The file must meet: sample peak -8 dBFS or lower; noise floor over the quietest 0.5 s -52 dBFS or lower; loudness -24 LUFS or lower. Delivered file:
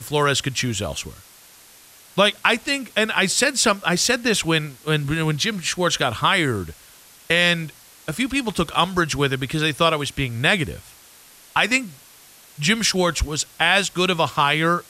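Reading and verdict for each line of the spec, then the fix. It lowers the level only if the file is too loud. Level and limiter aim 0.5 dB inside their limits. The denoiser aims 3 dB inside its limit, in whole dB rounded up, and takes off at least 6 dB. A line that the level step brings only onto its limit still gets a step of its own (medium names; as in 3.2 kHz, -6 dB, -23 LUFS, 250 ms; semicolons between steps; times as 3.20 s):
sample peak -4.0 dBFS: fail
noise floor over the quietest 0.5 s -48 dBFS: fail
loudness -20.0 LUFS: fail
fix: trim -4.5 dB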